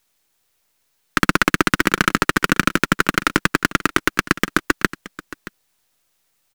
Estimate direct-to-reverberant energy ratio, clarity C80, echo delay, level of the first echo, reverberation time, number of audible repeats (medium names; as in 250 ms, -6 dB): no reverb, no reverb, 624 ms, -17.0 dB, no reverb, 1